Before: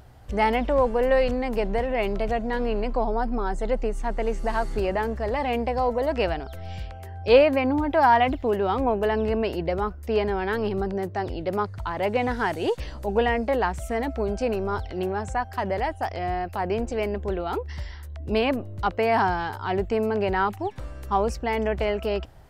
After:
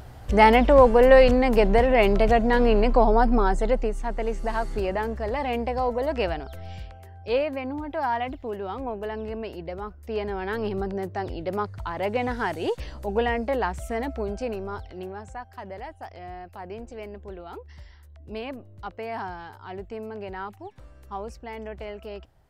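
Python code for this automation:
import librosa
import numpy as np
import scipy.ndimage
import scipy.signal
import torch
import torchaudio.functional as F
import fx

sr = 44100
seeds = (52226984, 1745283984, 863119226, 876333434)

y = fx.gain(x, sr, db=fx.line((3.39, 6.5), (4.02, -1.5), (6.58, -1.5), (7.25, -8.5), (9.81, -8.5), (10.66, -2.0), (14.06, -2.0), (15.47, -11.5)))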